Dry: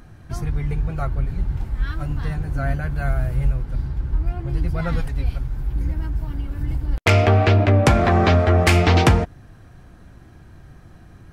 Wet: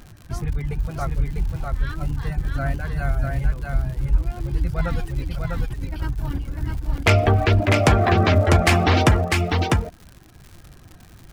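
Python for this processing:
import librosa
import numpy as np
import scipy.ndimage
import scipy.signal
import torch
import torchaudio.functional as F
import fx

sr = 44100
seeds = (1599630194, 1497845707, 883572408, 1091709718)

y = fx.dereverb_blind(x, sr, rt60_s=1.1)
y = fx.over_compress(y, sr, threshold_db=-30.0, ratio=-1.0, at=(5.23, 6.39), fade=0.02)
y = fx.dmg_crackle(y, sr, seeds[0], per_s=86.0, level_db=-33.0)
y = y + 10.0 ** (-3.5 / 20.0) * np.pad(y, (int(649 * sr / 1000.0), 0))[:len(y)]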